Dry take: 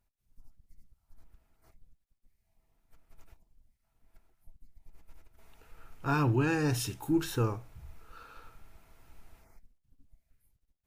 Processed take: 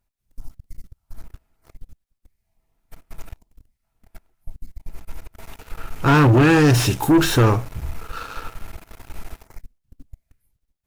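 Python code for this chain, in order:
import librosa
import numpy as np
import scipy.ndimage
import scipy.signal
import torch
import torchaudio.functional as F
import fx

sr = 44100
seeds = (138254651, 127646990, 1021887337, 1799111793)

y = fx.leveller(x, sr, passes=3)
y = fx.slew_limit(y, sr, full_power_hz=170.0)
y = F.gain(torch.from_numpy(y), 8.5).numpy()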